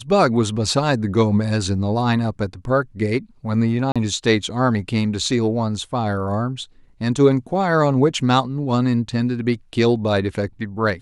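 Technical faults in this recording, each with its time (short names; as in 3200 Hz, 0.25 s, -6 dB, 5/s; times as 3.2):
3.92–3.96 gap 36 ms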